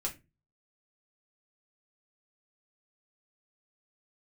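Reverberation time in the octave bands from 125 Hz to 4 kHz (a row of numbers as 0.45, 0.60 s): 0.50, 0.40, 0.30, 0.20, 0.25, 0.20 s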